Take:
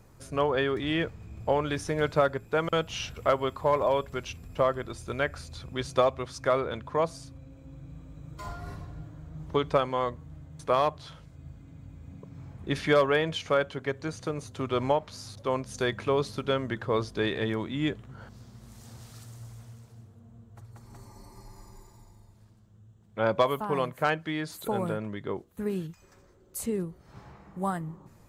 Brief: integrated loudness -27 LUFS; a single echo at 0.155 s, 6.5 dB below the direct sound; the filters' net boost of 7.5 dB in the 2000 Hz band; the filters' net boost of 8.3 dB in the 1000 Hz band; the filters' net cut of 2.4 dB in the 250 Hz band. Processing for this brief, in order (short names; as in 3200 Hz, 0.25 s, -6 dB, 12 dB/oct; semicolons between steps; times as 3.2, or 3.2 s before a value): bell 250 Hz -4 dB; bell 1000 Hz +8.5 dB; bell 2000 Hz +6.5 dB; echo 0.155 s -6.5 dB; gain -2.5 dB